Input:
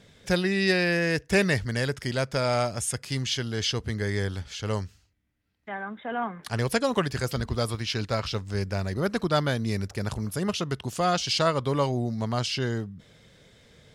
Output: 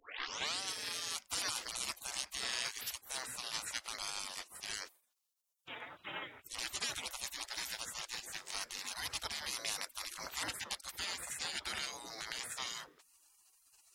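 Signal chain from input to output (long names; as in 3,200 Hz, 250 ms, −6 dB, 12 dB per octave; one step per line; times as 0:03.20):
turntable start at the beginning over 0.60 s
high-pass filter 130 Hz 6 dB per octave
low-shelf EQ 300 Hz −4.5 dB
brickwall limiter −21.5 dBFS, peak gain reduction 11.5 dB
gate on every frequency bin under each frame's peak −25 dB weak
level +9 dB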